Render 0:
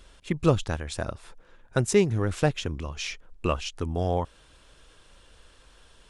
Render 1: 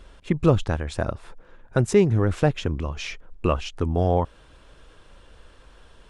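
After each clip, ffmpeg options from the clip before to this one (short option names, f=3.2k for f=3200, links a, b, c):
-filter_complex "[0:a]highshelf=f=2.8k:g=-11,asplit=2[a][b];[b]alimiter=limit=-17dB:level=0:latency=1,volume=0dB[c];[a][c]amix=inputs=2:normalize=0"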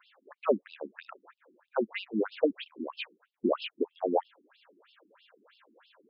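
-af "afftfilt=real='re*between(b*sr/1024,260*pow(3800/260,0.5+0.5*sin(2*PI*3.1*pts/sr))/1.41,260*pow(3800/260,0.5+0.5*sin(2*PI*3.1*pts/sr))*1.41)':imag='im*between(b*sr/1024,260*pow(3800/260,0.5+0.5*sin(2*PI*3.1*pts/sr))/1.41,260*pow(3800/260,0.5+0.5*sin(2*PI*3.1*pts/sr))*1.41)':win_size=1024:overlap=0.75"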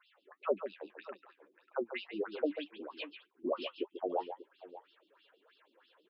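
-filter_complex "[0:a]equalizer=f=220:t=o:w=0.39:g=-14.5,flanger=delay=4.4:depth=6.2:regen=46:speed=1.8:shape=triangular,asplit=2[a][b];[b]aecho=0:1:141|590:0.335|0.158[c];[a][c]amix=inputs=2:normalize=0,volume=-1.5dB"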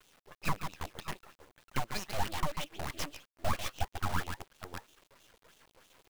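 -af "acrusher=bits=8:dc=4:mix=0:aa=0.000001,aeval=exprs='abs(val(0))':c=same,alimiter=level_in=2dB:limit=-24dB:level=0:latency=1:release=343,volume=-2dB,volume=7.5dB"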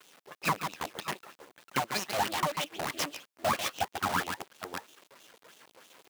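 -af "highpass=210,volume=6.5dB"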